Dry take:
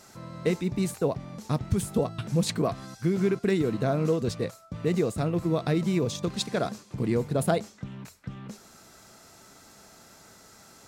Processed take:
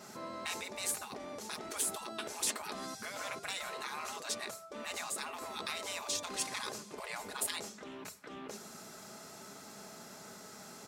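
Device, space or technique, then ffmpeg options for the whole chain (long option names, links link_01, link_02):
behind a face mask: -af "afftfilt=real='re*lt(hypot(re,im),0.0447)':imag='im*lt(hypot(re,im),0.0447)':win_size=1024:overlap=0.75,highpass=130,highshelf=frequency=2100:gain=-3.5,aecho=1:1:4.8:0.34,adynamicequalizer=threshold=0.00112:dfrequency=9700:dqfactor=0.71:tfrequency=9700:tqfactor=0.71:attack=5:release=100:ratio=0.375:range=3:mode=boostabove:tftype=bell,volume=3dB"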